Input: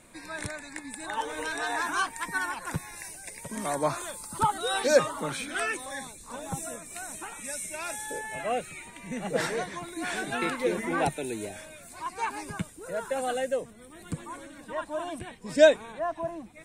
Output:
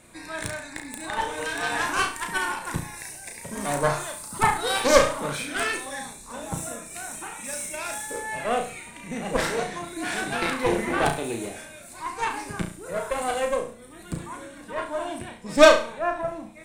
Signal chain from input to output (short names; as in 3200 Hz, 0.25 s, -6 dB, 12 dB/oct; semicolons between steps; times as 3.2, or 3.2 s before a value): added harmonics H 3 -22 dB, 6 -14 dB, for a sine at -5.5 dBFS; flutter echo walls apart 5.9 m, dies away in 0.39 s; gain +4 dB